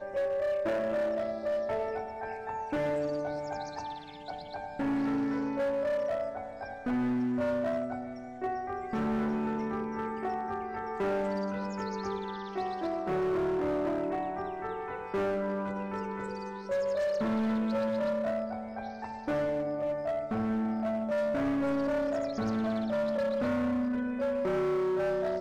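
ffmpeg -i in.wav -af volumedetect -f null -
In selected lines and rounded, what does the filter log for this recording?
mean_volume: -31.5 dB
max_volume: -26.8 dB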